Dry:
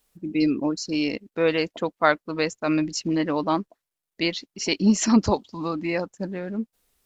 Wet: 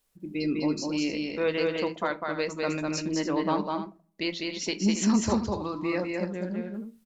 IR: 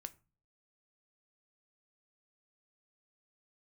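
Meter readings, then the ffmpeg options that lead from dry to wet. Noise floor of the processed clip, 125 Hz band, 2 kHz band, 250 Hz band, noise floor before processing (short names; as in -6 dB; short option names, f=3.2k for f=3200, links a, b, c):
-63 dBFS, -3.0 dB, -5.0 dB, -4.0 dB, under -85 dBFS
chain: -filter_complex "[0:a]alimiter=limit=-12dB:level=0:latency=1:release=224,aecho=1:1:201.2|279.9:0.708|0.282[a];[1:a]atrim=start_sample=2205[b];[a][b]afir=irnorm=-1:irlink=0"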